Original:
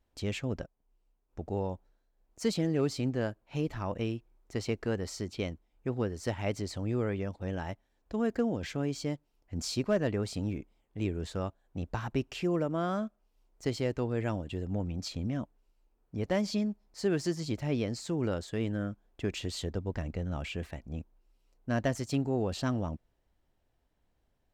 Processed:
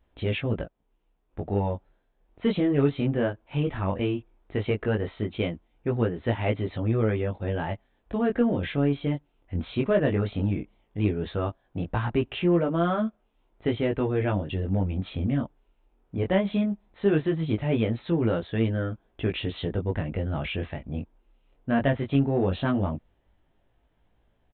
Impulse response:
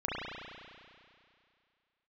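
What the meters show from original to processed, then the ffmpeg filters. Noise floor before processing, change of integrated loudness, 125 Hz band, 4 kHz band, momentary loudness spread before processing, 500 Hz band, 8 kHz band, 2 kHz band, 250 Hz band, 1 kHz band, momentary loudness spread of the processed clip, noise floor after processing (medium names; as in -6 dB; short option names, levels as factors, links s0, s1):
-75 dBFS, +6.5 dB, +7.5 dB, +2.5 dB, 11 LU, +6.5 dB, under -35 dB, +6.5 dB, +6.5 dB, +6.5 dB, 10 LU, -70 dBFS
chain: -filter_complex "[0:a]flanger=delay=17.5:depth=3.9:speed=0.16,asplit=2[s0][s1];[s1]asoftclip=type=tanh:threshold=0.0188,volume=0.376[s2];[s0][s2]amix=inputs=2:normalize=0,aresample=8000,aresample=44100,volume=2.51"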